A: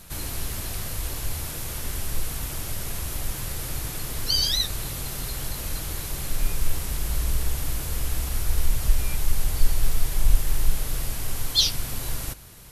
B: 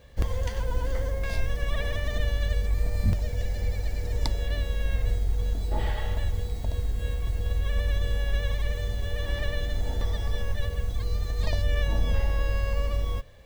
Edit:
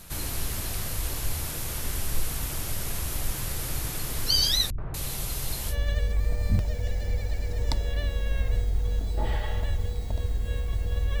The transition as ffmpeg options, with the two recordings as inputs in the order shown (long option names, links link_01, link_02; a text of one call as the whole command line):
ffmpeg -i cue0.wav -i cue1.wav -filter_complex "[0:a]asettb=1/sr,asplit=3[link_01][link_02][link_03];[link_01]atrim=end=4.704[link_04];[link_02]atrim=start=4.7:end=5.76,asetpts=PTS-STARTPTS,afade=type=in:duration=0.004:curve=qsin,afade=type=out:start_time=1.056:duration=0.004:curve=qsin,acrossover=split=270|1500[link_05][link_06][link_07];[link_06]adelay=80[link_08];[link_07]adelay=240[link_09];[link_05][link_08][link_09]amix=inputs=3:normalize=0,atrim=end_sample=46746[link_10];[link_03]atrim=start=5.756[link_11];[link_04][link_10]acrossfade=duration=0.004:curve1=hsin:curve2=qsin[link_12];[link_12][link_11]acrossfade=duration=0.004:curve1=qsin:curve2=hsin,apad=whole_dur=11.2,atrim=end=11.2,atrim=end=5.76,asetpts=PTS-STARTPTS[link_13];[1:a]atrim=start=2.22:end=7.74,asetpts=PTS-STARTPTS[link_14];[link_13][link_14]acrossfade=duration=0.08:curve1=tri:curve2=tri" out.wav